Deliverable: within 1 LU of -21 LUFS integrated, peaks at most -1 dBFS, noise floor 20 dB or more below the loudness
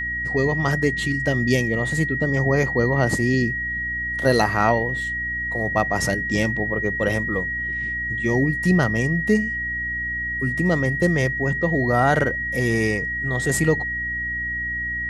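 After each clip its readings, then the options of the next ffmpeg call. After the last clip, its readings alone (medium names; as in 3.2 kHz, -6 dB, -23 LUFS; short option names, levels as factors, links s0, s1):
hum 60 Hz; highest harmonic 300 Hz; hum level -34 dBFS; steady tone 1.9 kHz; tone level -24 dBFS; loudness -21.5 LUFS; peak level -4.5 dBFS; loudness target -21.0 LUFS
-> -af "bandreject=f=60:t=h:w=6,bandreject=f=120:t=h:w=6,bandreject=f=180:t=h:w=6,bandreject=f=240:t=h:w=6,bandreject=f=300:t=h:w=6"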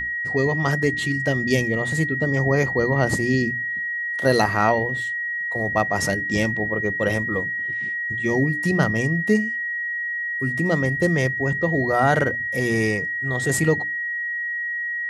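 hum not found; steady tone 1.9 kHz; tone level -24 dBFS
-> -af "bandreject=f=1900:w=30"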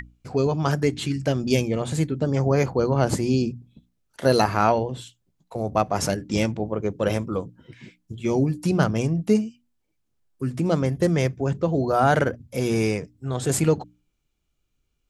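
steady tone not found; loudness -23.5 LUFS; peak level -4.0 dBFS; loudness target -21.0 LUFS
-> -af "volume=1.33"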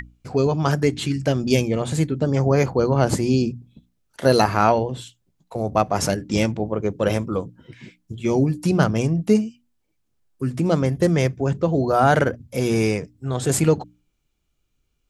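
loudness -21.0 LUFS; peak level -1.5 dBFS; noise floor -71 dBFS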